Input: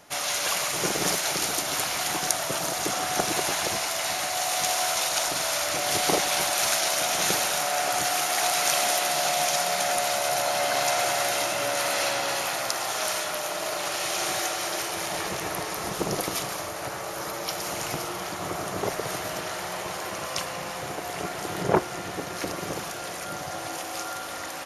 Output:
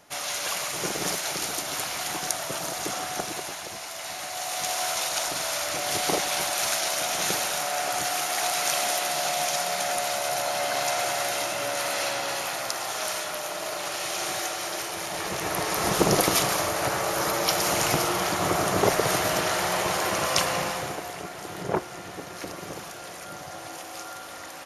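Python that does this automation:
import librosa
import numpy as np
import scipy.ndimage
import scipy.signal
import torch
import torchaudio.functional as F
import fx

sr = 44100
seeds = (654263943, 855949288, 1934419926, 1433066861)

y = fx.gain(x, sr, db=fx.line((2.97, -3.0), (3.66, -10.0), (4.86, -2.0), (15.12, -2.0), (15.93, 7.0), (20.58, 7.0), (21.23, -5.0)))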